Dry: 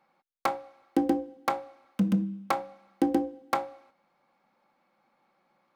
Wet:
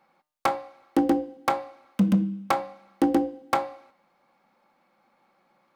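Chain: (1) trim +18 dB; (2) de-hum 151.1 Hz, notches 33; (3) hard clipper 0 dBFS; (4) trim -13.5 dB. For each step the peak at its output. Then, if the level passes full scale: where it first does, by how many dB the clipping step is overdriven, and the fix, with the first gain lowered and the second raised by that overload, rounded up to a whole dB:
+6.5 dBFS, +6.5 dBFS, 0.0 dBFS, -13.5 dBFS; step 1, 6.5 dB; step 1 +11 dB, step 4 -6.5 dB

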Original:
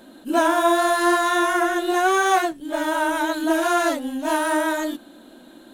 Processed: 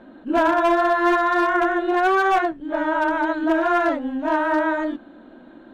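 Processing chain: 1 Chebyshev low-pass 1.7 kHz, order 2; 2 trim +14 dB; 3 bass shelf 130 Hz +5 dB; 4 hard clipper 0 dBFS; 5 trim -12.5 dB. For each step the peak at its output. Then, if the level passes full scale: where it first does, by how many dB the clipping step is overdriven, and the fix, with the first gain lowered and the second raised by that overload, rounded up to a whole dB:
-6.5 dBFS, +7.5 dBFS, +7.5 dBFS, 0.0 dBFS, -12.5 dBFS; step 2, 7.5 dB; step 2 +6 dB, step 5 -4.5 dB

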